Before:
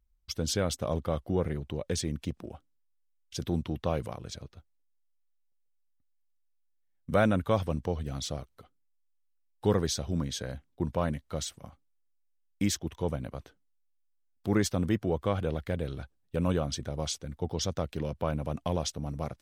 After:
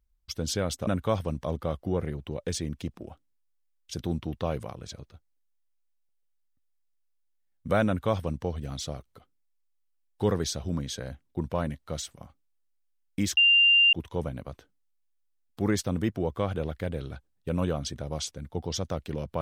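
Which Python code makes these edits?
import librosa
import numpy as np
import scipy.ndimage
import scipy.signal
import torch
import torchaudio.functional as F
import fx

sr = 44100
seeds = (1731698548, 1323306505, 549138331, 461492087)

y = fx.edit(x, sr, fx.duplicate(start_s=7.29, length_s=0.57, to_s=0.87),
    fx.insert_tone(at_s=12.8, length_s=0.56, hz=2790.0, db=-16.0), tone=tone)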